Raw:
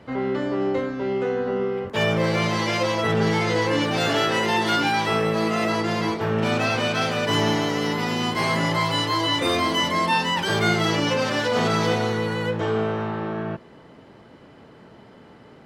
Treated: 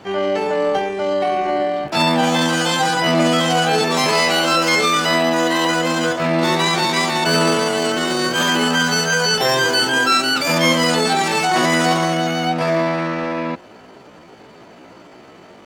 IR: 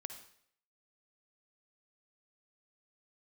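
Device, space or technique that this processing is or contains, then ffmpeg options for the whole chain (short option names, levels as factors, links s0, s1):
chipmunk voice: -af "asetrate=66075,aresample=44100,atempo=0.66742,volume=1.88"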